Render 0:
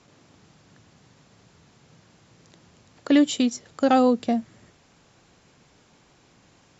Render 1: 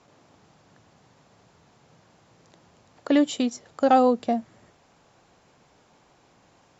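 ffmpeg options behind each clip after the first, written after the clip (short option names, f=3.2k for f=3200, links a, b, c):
-af "equalizer=f=760:w=0.8:g=7.5,volume=-4.5dB"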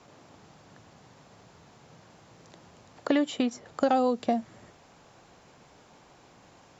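-filter_complex "[0:a]acrossover=split=730|2600[a][b][c];[a]acompressor=threshold=-28dB:ratio=4[d];[b]acompressor=threshold=-35dB:ratio=4[e];[c]acompressor=threshold=-48dB:ratio=4[f];[d][e][f]amix=inputs=3:normalize=0,volume=3.5dB"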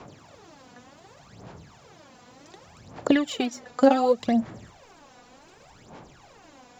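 -af "aphaser=in_gain=1:out_gain=1:delay=4.1:decay=0.71:speed=0.67:type=sinusoidal,volume=1.5dB"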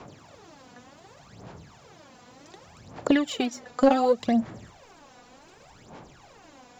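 -af "asoftclip=type=tanh:threshold=-8dB"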